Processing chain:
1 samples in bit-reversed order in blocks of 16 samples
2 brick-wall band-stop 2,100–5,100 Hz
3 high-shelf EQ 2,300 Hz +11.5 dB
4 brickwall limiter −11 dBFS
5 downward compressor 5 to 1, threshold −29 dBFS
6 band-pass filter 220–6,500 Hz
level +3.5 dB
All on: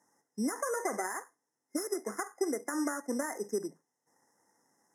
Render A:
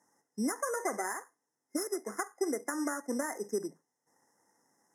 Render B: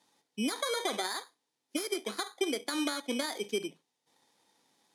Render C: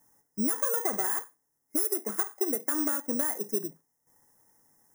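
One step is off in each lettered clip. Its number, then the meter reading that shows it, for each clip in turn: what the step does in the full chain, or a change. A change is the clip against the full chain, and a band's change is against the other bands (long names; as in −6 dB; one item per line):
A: 4, change in crest factor +1.5 dB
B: 2, 4 kHz band +16.0 dB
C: 6, 8 kHz band +7.5 dB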